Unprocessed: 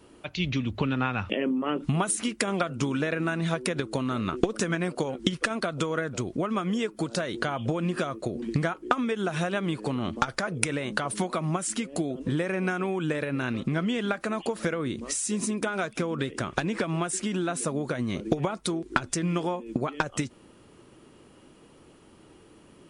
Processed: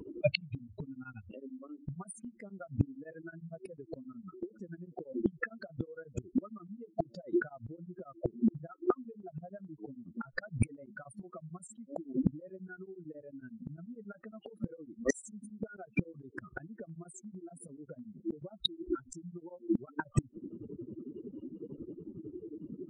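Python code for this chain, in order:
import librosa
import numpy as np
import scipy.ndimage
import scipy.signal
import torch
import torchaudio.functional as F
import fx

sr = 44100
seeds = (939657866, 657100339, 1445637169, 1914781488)

y = fx.spec_expand(x, sr, power=3.8)
y = fx.gate_flip(y, sr, shuts_db=-26.0, range_db=-28)
y = y * np.abs(np.cos(np.pi * 11.0 * np.arange(len(y)) / sr))
y = y * 10.0 ** (12.5 / 20.0)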